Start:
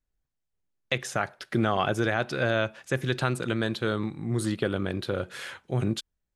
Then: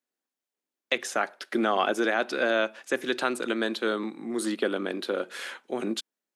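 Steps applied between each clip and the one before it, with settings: steep high-pass 230 Hz 36 dB/oct; gain +1.5 dB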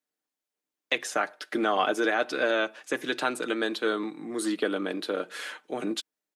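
comb 6.6 ms, depth 46%; gain -1 dB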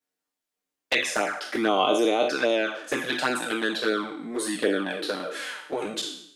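spectral trails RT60 0.68 s; envelope flanger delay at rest 10.9 ms, full sweep at -19.5 dBFS; gain +4 dB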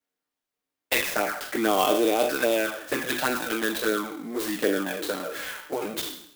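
clock jitter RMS 0.038 ms

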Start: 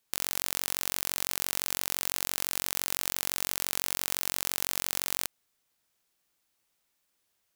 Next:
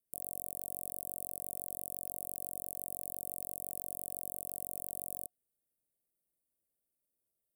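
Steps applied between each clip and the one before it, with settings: Chebyshev band-stop 610–8600 Hz, order 4; small resonant body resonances 720/1100 Hz, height 10 dB, ringing for 0.1 s; gain -7.5 dB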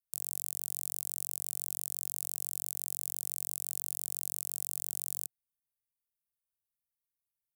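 EQ curve 130 Hz 0 dB, 520 Hz -30 dB, 1000 Hz -8 dB, 2000 Hz -15 dB, 12000 Hz +1 dB; sample leveller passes 3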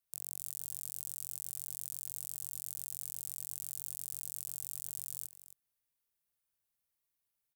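limiter -24.5 dBFS, peak gain reduction 9.5 dB; echo 0.269 s -14 dB; gain +4.5 dB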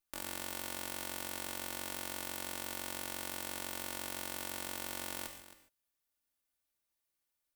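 minimum comb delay 3.4 ms; non-linear reverb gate 0.17 s flat, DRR 5.5 dB

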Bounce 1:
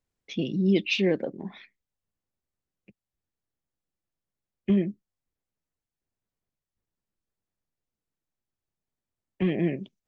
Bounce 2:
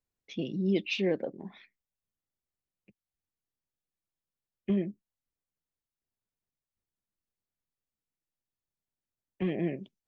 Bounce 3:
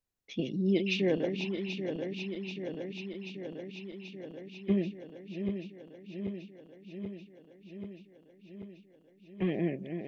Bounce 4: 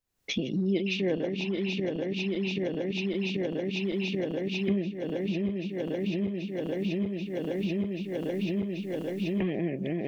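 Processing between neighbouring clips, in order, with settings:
dynamic EQ 660 Hz, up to +4 dB, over -38 dBFS, Q 0.85; gain -6.5 dB
regenerating reverse delay 0.392 s, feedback 84%, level -7 dB
recorder AGC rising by 61 dB/s

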